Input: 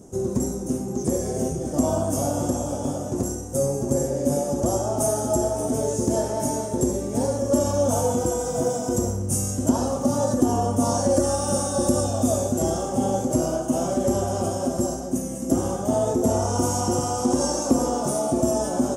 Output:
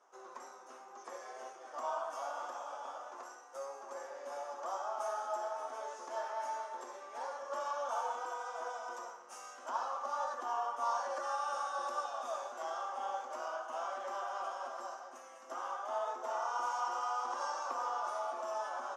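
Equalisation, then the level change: ladder high-pass 960 Hz, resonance 45%; air absorption 270 m; +4.5 dB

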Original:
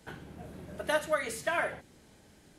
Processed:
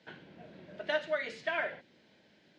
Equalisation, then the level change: speaker cabinet 240–4400 Hz, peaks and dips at 280 Hz -5 dB, 420 Hz -6 dB, 810 Hz -7 dB, 1200 Hz -10 dB; 0.0 dB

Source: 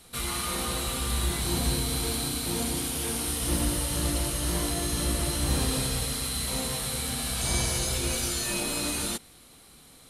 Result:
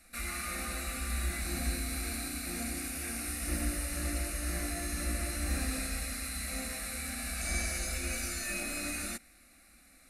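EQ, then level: low shelf 99 Hz +7 dB; bell 2600 Hz +13.5 dB 1.1 oct; fixed phaser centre 640 Hz, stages 8; -7.0 dB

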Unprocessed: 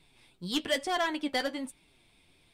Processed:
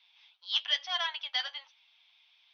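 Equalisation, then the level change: steep high-pass 800 Hz 36 dB/oct; brick-wall FIR low-pass 6300 Hz; bell 3200 Hz +11 dB 0.53 oct; -4.0 dB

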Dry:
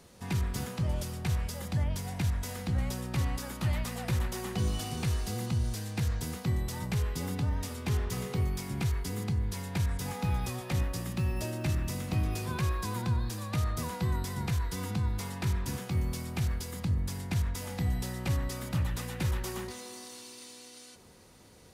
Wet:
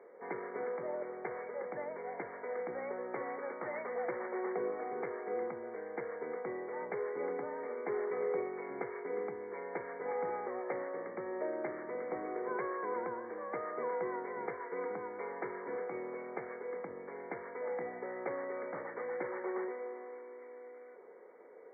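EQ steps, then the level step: ladder high-pass 400 Hz, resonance 65%; brick-wall FIR low-pass 2300 Hz; +9.5 dB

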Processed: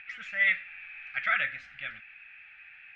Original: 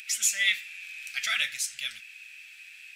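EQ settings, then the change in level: LPF 1800 Hz 24 dB/oct; +8.0 dB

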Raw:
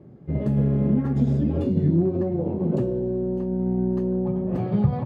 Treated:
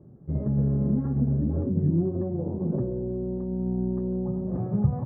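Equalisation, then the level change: LPF 1500 Hz 24 dB/oct; air absorption 250 m; low shelf 130 Hz +8 dB; -6.0 dB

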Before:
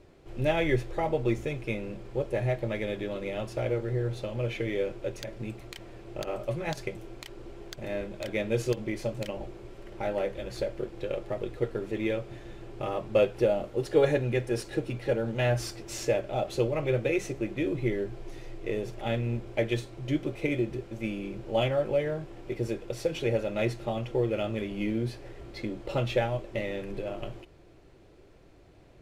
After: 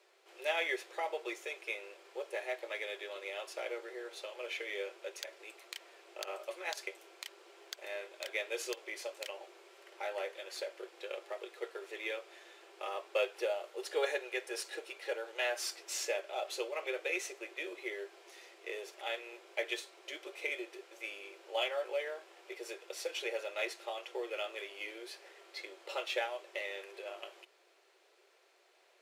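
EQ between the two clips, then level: elliptic high-pass 370 Hz, stop band 40 dB; LPF 1800 Hz 6 dB/oct; differentiator; +13.5 dB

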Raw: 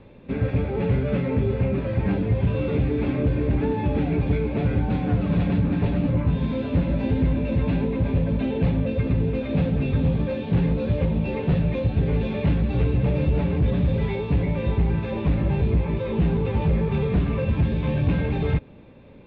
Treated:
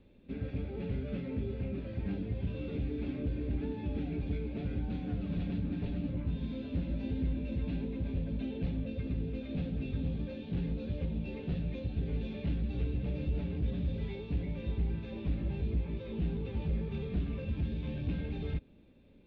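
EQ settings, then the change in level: ten-band EQ 125 Hz -9 dB, 500 Hz -6 dB, 1000 Hz -12 dB, 2000 Hz -6 dB; -8.0 dB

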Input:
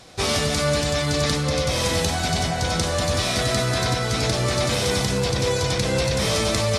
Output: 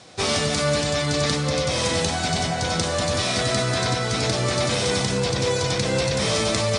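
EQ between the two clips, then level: HPF 94 Hz; steep low-pass 10000 Hz 96 dB/oct; 0.0 dB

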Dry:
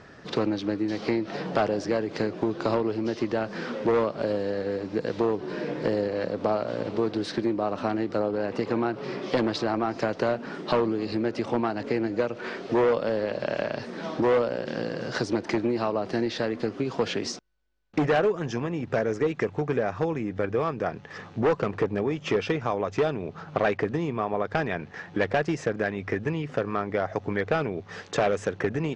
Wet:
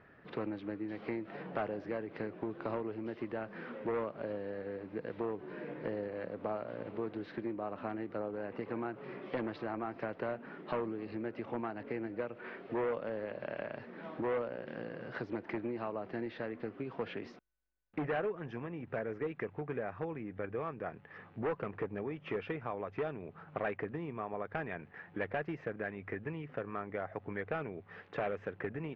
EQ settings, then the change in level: ladder low-pass 3000 Hz, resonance 25%; -6.5 dB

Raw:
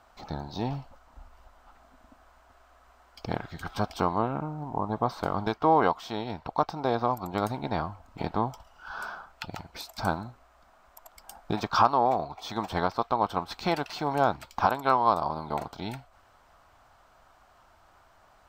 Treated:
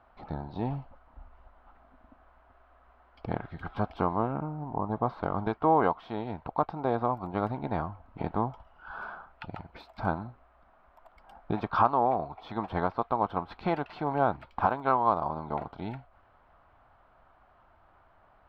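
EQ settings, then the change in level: air absorption 470 m; 0.0 dB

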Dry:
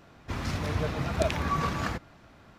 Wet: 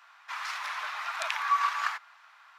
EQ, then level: steep high-pass 970 Hz 36 dB/oct; high shelf 3200 Hz -9.5 dB; +6.5 dB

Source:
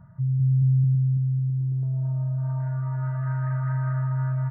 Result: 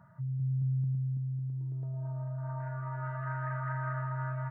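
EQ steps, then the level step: HPF 520 Hz 6 dB/oct; +1.5 dB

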